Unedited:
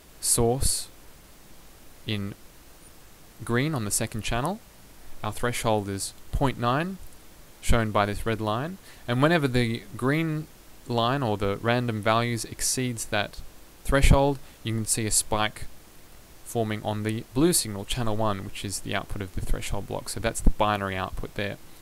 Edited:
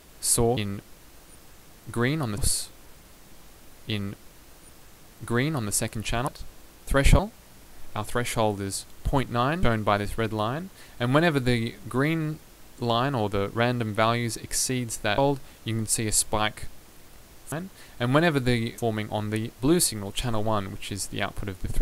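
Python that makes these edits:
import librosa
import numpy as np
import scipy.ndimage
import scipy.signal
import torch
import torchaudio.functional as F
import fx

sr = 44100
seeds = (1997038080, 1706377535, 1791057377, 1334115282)

y = fx.edit(x, sr, fx.duplicate(start_s=2.1, length_s=1.81, to_s=0.57),
    fx.cut(start_s=6.91, length_s=0.8),
    fx.duplicate(start_s=8.6, length_s=1.26, to_s=16.51),
    fx.move(start_s=13.26, length_s=0.91, to_s=4.47), tone=tone)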